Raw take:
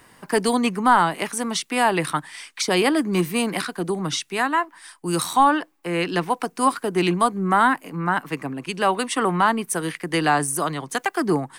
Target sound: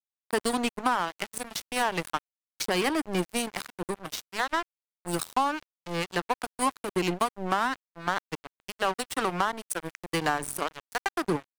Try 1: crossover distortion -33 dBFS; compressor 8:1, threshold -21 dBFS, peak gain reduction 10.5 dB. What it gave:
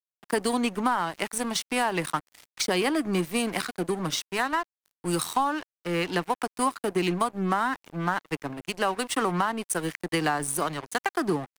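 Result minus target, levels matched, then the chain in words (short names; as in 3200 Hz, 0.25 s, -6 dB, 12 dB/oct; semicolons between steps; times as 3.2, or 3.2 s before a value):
crossover distortion: distortion -9 dB
crossover distortion -23.5 dBFS; compressor 8:1, threshold -21 dBFS, peak gain reduction 9.5 dB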